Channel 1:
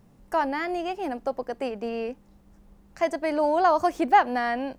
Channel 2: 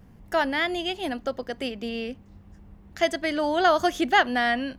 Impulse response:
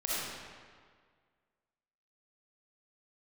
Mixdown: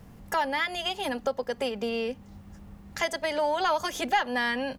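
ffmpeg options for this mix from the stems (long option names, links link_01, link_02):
-filter_complex "[0:a]asplit=2[link_01][link_02];[link_02]highpass=frequency=720:poles=1,volume=10dB,asoftclip=type=tanh:threshold=-7.5dB[link_03];[link_01][link_03]amix=inputs=2:normalize=0,lowpass=frequency=2500:poles=1,volume=-6dB,volume=0.5dB[link_04];[1:a]volume=-1,adelay=2.1,volume=1.5dB[link_05];[link_04][link_05]amix=inputs=2:normalize=0,highshelf=frequency=4600:gain=7.5,acompressor=threshold=-30dB:ratio=2"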